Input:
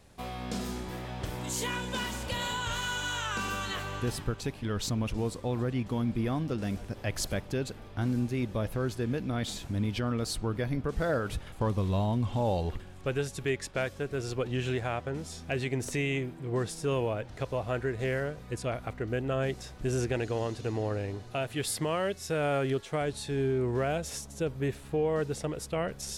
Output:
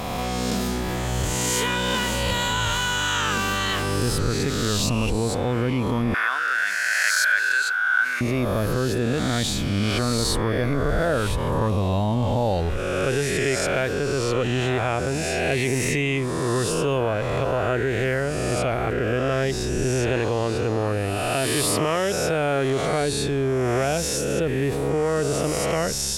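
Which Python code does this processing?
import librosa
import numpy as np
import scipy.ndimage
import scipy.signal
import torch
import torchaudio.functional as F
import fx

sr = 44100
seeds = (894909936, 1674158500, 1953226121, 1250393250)

y = fx.spec_swells(x, sr, rise_s=1.52)
y = fx.highpass_res(y, sr, hz=1500.0, q=14.0, at=(6.14, 8.21))
y = fx.env_flatten(y, sr, amount_pct=50)
y = y * librosa.db_to_amplitude(1.5)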